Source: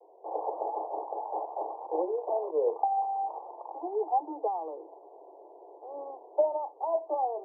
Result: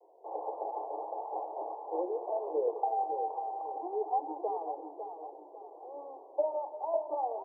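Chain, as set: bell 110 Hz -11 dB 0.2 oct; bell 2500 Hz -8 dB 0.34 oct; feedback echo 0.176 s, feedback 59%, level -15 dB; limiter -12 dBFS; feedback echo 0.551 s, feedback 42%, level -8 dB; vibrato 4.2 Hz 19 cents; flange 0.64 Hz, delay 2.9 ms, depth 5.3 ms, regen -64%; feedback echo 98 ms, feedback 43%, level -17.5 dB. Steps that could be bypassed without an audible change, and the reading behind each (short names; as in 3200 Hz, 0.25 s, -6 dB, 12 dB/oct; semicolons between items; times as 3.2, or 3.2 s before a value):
bell 110 Hz: input band starts at 290 Hz; bell 2500 Hz: input band ends at 1100 Hz; limiter -12 dBFS: input peak -15.0 dBFS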